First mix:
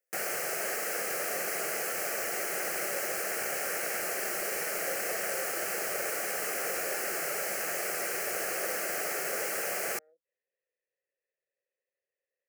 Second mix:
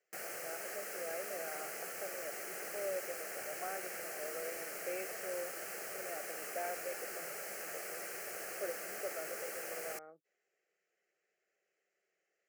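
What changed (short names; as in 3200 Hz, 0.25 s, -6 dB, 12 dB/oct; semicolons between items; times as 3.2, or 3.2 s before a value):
speech: remove vowel filter e; background -11.0 dB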